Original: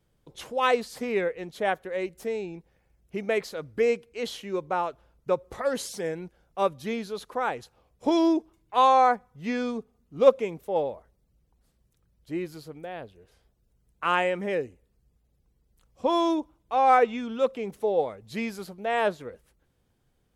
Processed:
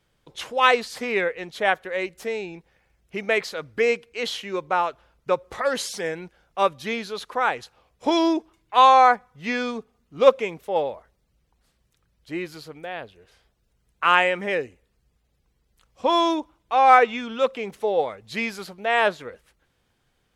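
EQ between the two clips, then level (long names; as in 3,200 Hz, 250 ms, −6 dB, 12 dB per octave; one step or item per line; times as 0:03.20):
low-pass filter 2,600 Hz 6 dB per octave
tilt shelving filter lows −7.5 dB
+6.5 dB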